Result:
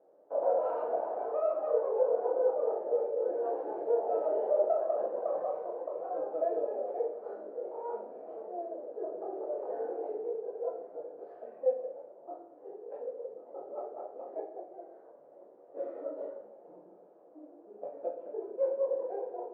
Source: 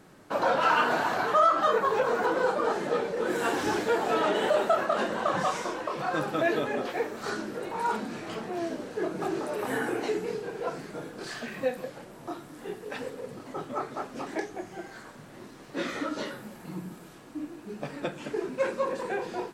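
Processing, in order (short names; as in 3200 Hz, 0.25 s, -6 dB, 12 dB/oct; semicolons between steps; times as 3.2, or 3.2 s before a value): tracing distortion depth 0.13 ms; Butterworth band-pass 560 Hz, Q 2; reverb RT60 0.65 s, pre-delay 6 ms, DRR 1 dB; gain -3.5 dB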